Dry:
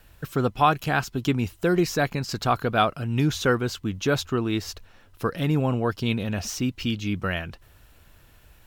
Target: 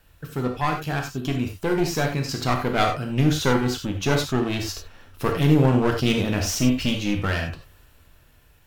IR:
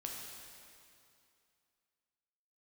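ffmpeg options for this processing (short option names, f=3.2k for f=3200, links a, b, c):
-filter_complex "[0:a]dynaudnorm=f=280:g=11:m=11.5dB,aeval=exprs='clip(val(0),-1,0.0841)':c=same[a];[1:a]atrim=start_sample=2205,afade=t=out:st=0.15:d=0.01,atrim=end_sample=7056[b];[a][b]afir=irnorm=-1:irlink=0"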